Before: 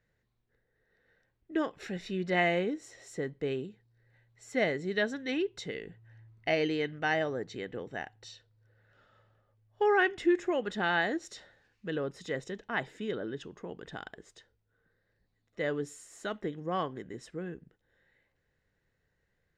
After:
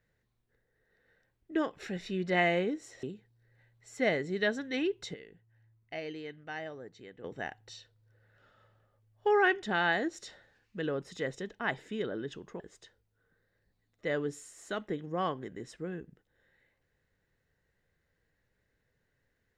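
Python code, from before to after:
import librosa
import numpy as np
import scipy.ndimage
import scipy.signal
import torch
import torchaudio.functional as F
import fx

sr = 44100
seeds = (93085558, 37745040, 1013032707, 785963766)

y = fx.edit(x, sr, fx.cut(start_s=3.03, length_s=0.55),
    fx.clip_gain(start_s=5.69, length_s=2.1, db=-11.0),
    fx.cut(start_s=10.18, length_s=0.54),
    fx.cut(start_s=13.69, length_s=0.45), tone=tone)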